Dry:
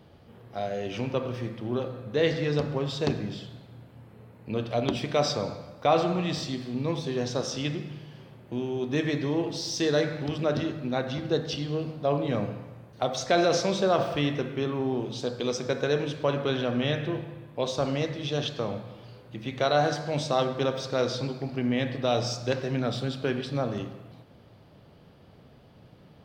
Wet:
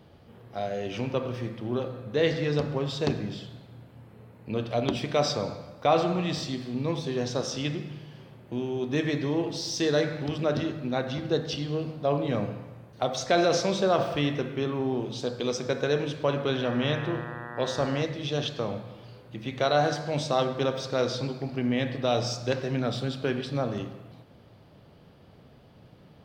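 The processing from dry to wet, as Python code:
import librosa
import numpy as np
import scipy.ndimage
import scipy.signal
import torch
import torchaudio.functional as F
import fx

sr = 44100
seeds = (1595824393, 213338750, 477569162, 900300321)

y = fx.dmg_buzz(x, sr, base_hz=120.0, harmonics=16, level_db=-40.0, tilt_db=0, odd_only=False, at=(16.63, 18.01), fade=0.02)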